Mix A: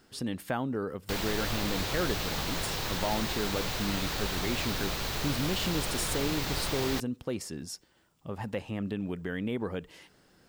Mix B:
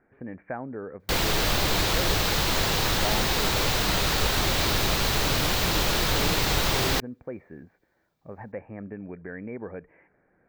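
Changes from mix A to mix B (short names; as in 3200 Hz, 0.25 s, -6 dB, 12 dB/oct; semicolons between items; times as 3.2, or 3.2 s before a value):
speech: add rippled Chebyshev low-pass 2400 Hz, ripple 6 dB; background +9.0 dB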